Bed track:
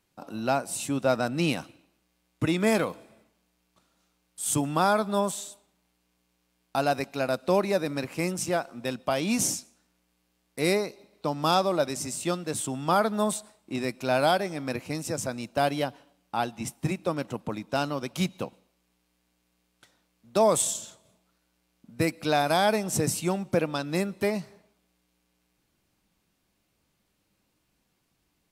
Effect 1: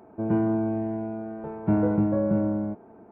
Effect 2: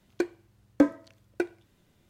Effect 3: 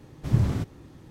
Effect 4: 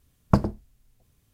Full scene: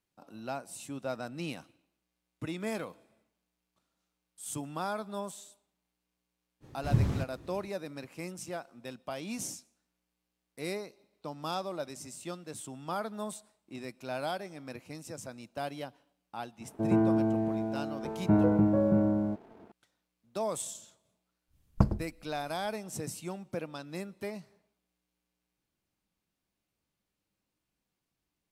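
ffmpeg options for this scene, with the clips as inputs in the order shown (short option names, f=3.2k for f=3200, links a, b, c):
-filter_complex "[0:a]volume=-12dB[a];[1:a]aeval=exprs='sgn(val(0))*max(abs(val(0))-0.00126,0)':c=same[b];[4:a]lowshelf=f=130:g=10.5[c];[3:a]atrim=end=1.1,asetpts=PTS-STARTPTS,volume=-4.5dB,afade=t=in:d=0.05,afade=t=out:st=1.05:d=0.05,adelay=6600[d];[b]atrim=end=3.11,asetpts=PTS-STARTPTS,volume=-1.5dB,afade=t=in:d=0.004:c=hsin,afade=t=out:st=3.106:d=0.004:c=hsin,adelay=16610[e];[c]atrim=end=1.33,asetpts=PTS-STARTPTS,volume=-9.5dB,afade=t=in:d=0.1,afade=t=out:st=1.23:d=0.1,adelay=21470[f];[a][d][e][f]amix=inputs=4:normalize=0"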